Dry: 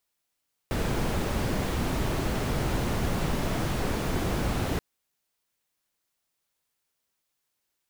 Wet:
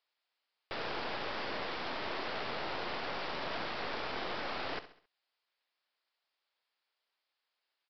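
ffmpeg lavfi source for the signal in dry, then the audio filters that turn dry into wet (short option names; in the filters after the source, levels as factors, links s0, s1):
-f lavfi -i "anoisesrc=c=brown:a=0.209:d=4.08:r=44100:seed=1"
-af "highpass=560,aresample=11025,aeval=exprs='clip(val(0),-1,0.00531)':c=same,aresample=44100,aecho=1:1:67|134|201|268:0.211|0.0909|0.0391|0.0168"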